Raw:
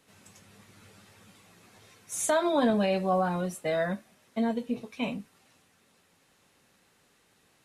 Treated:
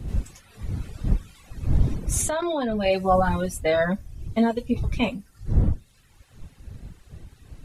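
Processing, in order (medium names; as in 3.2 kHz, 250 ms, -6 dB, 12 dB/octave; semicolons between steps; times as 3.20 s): wind noise 91 Hz -34 dBFS; reverb removal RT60 1 s; 2.21–2.86 s: level held to a coarse grid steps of 11 dB; trim +8 dB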